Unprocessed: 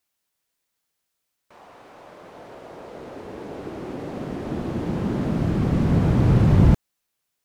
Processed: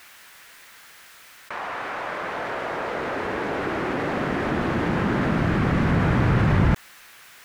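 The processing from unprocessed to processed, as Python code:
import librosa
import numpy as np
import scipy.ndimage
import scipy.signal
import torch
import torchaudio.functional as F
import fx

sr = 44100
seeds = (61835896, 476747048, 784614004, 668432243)

y = fx.peak_eq(x, sr, hz=1700.0, db=14.0, octaves=1.9)
y = fx.env_flatten(y, sr, amount_pct=50)
y = y * librosa.db_to_amplitude(-5.5)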